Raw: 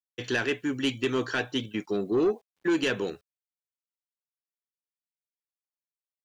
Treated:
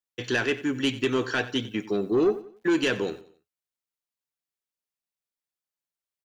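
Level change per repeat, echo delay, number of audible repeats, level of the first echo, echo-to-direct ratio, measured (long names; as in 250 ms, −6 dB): −8.5 dB, 91 ms, 3, −16.5 dB, −16.0 dB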